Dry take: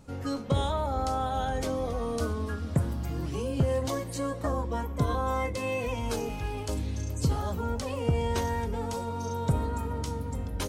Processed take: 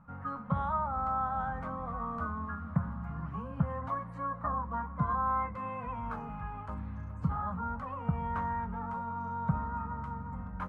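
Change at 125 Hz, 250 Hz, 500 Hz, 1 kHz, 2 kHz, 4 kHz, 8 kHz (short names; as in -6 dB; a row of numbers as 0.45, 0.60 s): -6.0 dB, -5.5 dB, -13.5 dB, +0.5 dB, -4.5 dB, under -25 dB, under -35 dB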